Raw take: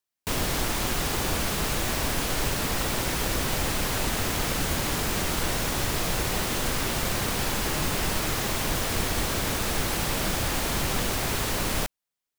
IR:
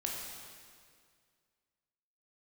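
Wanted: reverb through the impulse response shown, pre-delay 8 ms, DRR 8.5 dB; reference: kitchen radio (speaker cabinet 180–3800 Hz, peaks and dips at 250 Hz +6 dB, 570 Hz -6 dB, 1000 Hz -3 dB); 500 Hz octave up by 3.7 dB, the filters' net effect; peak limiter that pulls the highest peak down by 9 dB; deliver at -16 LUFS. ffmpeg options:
-filter_complex "[0:a]equalizer=f=500:t=o:g=7.5,alimiter=limit=-21dB:level=0:latency=1,asplit=2[a][b];[1:a]atrim=start_sample=2205,adelay=8[c];[b][c]afir=irnorm=-1:irlink=0,volume=-11dB[d];[a][d]amix=inputs=2:normalize=0,highpass=180,equalizer=f=250:t=q:w=4:g=6,equalizer=f=570:t=q:w=4:g=-6,equalizer=f=1k:t=q:w=4:g=-3,lowpass=f=3.8k:w=0.5412,lowpass=f=3.8k:w=1.3066,volume=16.5dB"

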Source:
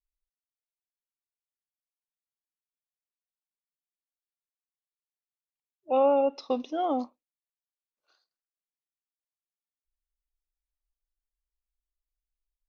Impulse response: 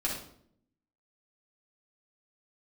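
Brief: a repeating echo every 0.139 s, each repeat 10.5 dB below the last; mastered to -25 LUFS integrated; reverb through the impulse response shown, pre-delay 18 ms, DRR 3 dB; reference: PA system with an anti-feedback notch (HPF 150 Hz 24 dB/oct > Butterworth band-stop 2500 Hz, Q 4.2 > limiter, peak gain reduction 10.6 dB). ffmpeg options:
-filter_complex "[0:a]aecho=1:1:139|278|417:0.299|0.0896|0.0269,asplit=2[a][b];[1:a]atrim=start_sample=2205,adelay=18[c];[b][c]afir=irnorm=-1:irlink=0,volume=-9dB[d];[a][d]amix=inputs=2:normalize=0,highpass=f=150:w=0.5412,highpass=f=150:w=1.3066,asuperstop=centerf=2500:order=8:qfactor=4.2,volume=4dB,alimiter=limit=-16dB:level=0:latency=1"

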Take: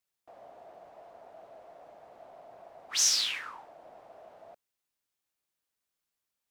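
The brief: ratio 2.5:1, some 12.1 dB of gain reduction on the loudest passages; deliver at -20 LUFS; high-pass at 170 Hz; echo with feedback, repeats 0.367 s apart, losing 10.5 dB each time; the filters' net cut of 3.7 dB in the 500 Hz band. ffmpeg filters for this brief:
-af "highpass=170,equalizer=f=500:t=o:g=-5.5,acompressor=threshold=-40dB:ratio=2.5,aecho=1:1:367|734|1101:0.299|0.0896|0.0269,volume=23dB"

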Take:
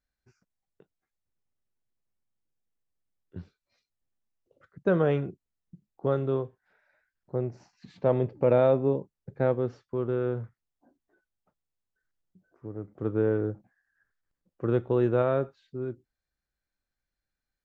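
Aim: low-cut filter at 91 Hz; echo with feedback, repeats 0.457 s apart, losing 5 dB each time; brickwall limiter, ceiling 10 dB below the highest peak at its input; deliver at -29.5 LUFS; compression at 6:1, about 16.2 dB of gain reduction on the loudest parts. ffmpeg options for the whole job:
-af "highpass=91,acompressor=threshold=-35dB:ratio=6,alimiter=level_in=7.5dB:limit=-24dB:level=0:latency=1,volume=-7.5dB,aecho=1:1:457|914|1371|1828|2285|2742|3199:0.562|0.315|0.176|0.0988|0.0553|0.031|0.0173,volume=14dB"

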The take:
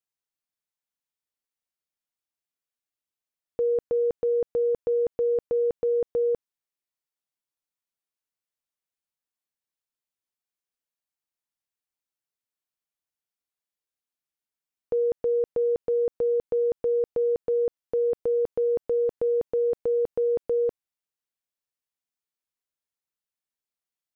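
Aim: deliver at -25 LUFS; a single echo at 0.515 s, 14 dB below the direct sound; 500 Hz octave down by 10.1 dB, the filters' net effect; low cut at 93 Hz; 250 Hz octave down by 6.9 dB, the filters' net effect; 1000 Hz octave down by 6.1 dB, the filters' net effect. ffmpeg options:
-af "highpass=93,equalizer=f=250:t=o:g=-5.5,equalizer=f=500:t=o:g=-8.5,equalizer=f=1k:t=o:g=-4,aecho=1:1:515:0.2,volume=11.5dB"

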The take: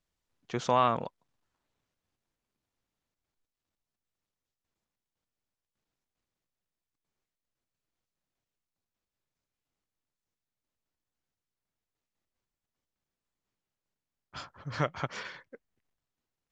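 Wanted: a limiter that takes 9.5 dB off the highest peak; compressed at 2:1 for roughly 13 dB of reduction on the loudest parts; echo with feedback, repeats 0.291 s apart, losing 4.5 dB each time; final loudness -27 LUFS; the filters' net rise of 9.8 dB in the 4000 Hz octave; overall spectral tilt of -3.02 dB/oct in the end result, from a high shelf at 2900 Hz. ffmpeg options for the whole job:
-af "highshelf=f=2.9k:g=6,equalizer=f=4k:t=o:g=8,acompressor=threshold=-43dB:ratio=2,alimiter=level_in=6dB:limit=-24dB:level=0:latency=1,volume=-6dB,aecho=1:1:291|582|873|1164|1455|1746|2037|2328|2619:0.596|0.357|0.214|0.129|0.0772|0.0463|0.0278|0.0167|0.01,volume=17.5dB"

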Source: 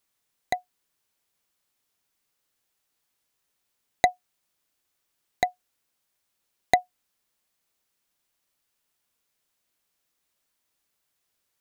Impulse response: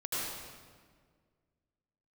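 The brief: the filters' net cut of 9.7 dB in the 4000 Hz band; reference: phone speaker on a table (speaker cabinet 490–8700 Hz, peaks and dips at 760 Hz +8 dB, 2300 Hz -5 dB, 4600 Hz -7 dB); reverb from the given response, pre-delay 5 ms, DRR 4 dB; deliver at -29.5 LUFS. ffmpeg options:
-filter_complex "[0:a]equalizer=f=4k:t=o:g=-7,asplit=2[a][b];[1:a]atrim=start_sample=2205,adelay=5[c];[b][c]afir=irnorm=-1:irlink=0,volume=-9.5dB[d];[a][d]amix=inputs=2:normalize=0,highpass=f=490:w=0.5412,highpass=f=490:w=1.3066,equalizer=f=760:t=q:w=4:g=8,equalizer=f=2.3k:t=q:w=4:g=-5,equalizer=f=4.6k:t=q:w=4:g=-7,lowpass=f=8.7k:w=0.5412,lowpass=f=8.7k:w=1.3066,volume=-4dB"

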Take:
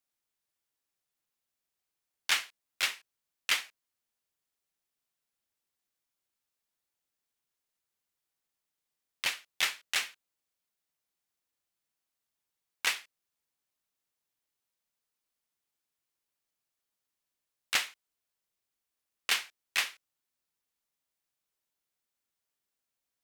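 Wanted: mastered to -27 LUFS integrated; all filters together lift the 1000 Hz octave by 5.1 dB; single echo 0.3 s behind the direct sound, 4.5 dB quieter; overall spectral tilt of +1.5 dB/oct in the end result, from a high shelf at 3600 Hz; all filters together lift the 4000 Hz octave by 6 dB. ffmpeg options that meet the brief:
-af "equalizer=f=1k:t=o:g=6,highshelf=f=3.6k:g=3,equalizer=f=4k:t=o:g=5.5,aecho=1:1:300:0.596,volume=0.5dB"

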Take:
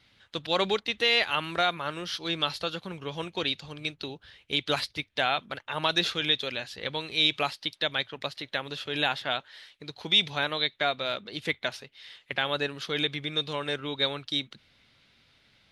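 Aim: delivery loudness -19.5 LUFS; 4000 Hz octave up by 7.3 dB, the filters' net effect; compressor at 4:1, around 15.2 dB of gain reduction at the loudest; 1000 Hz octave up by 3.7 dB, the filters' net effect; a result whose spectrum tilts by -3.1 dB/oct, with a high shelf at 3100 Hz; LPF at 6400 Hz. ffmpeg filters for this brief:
-af "lowpass=6.4k,equalizer=f=1k:t=o:g=4.5,highshelf=f=3.1k:g=3,equalizer=f=4k:t=o:g=6.5,acompressor=threshold=-31dB:ratio=4,volume=13.5dB"

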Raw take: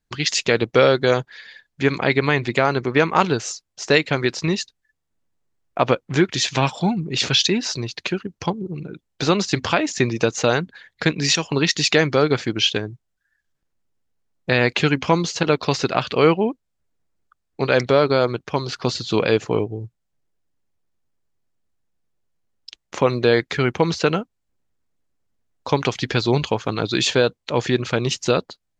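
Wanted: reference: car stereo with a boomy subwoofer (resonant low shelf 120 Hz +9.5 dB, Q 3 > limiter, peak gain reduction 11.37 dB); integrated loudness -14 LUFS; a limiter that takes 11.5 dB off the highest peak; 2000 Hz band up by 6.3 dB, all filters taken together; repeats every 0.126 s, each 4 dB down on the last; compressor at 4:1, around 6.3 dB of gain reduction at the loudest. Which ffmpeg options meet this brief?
-af "equalizer=f=2k:t=o:g=8,acompressor=threshold=-16dB:ratio=4,alimiter=limit=-12.5dB:level=0:latency=1,lowshelf=f=120:t=q:w=3:g=9.5,aecho=1:1:126|252|378|504|630|756|882|1008|1134:0.631|0.398|0.25|0.158|0.0994|0.0626|0.0394|0.0249|0.0157,volume=15dB,alimiter=limit=-5dB:level=0:latency=1"

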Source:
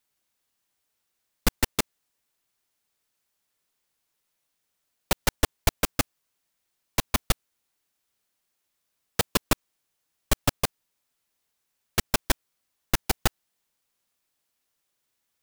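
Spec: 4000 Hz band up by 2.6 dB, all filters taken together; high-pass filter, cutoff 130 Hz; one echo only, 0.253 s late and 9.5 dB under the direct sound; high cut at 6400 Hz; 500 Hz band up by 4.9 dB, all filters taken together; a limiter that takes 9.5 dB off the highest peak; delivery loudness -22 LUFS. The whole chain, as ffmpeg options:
-af "highpass=130,lowpass=6.4k,equalizer=f=500:t=o:g=6,equalizer=f=4k:t=o:g=4,alimiter=limit=-15dB:level=0:latency=1,aecho=1:1:253:0.335,volume=12.5dB"

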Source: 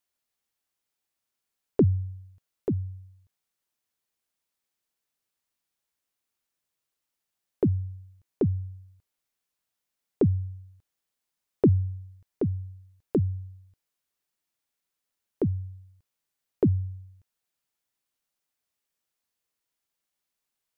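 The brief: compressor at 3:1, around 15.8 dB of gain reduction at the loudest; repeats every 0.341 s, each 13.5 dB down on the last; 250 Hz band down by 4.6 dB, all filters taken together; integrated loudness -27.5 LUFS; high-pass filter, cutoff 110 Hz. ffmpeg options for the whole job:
-af "highpass=110,equalizer=f=250:t=o:g=-6,acompressor=threshold=-41dB:ratio=3,aecho=1:1:341|682:0.211|0.0444,volume=18.5dB"

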